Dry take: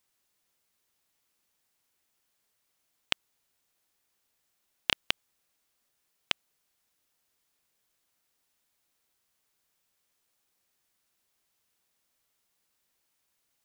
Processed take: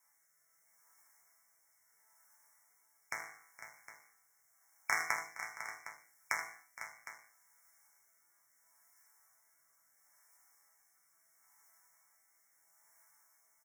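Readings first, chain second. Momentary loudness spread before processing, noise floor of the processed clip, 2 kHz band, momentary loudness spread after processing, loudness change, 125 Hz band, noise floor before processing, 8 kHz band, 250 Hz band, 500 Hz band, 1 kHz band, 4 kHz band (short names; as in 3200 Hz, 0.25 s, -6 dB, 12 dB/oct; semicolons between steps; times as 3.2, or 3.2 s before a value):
4 LU, -73 dBFS, +0.5 dB, 22 LU, -7.5 dB, -12.0 dB, -78 dBFS, +3.0 dB, -12.0 dB, -4.0 dB, +4.5 dB, -19.5 dB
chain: HPF 61 Hz; in parallel at -2.5 dB: negative-ratio compressor -32 dBFS, ratio -0.5; on the sum: resonant low shelf 580 Hz -13.5 dB, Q 1.5; resonator bank A2 sus4, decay 0.55 s; rotary speaker horn 0.75 Hz; brick-wall FIR band-stop 2300–5200 Hz; on a send: tapped delay 79/466/501/760 ms -11/-17/-11/-13.5 dB; on the sum: gain +18 dB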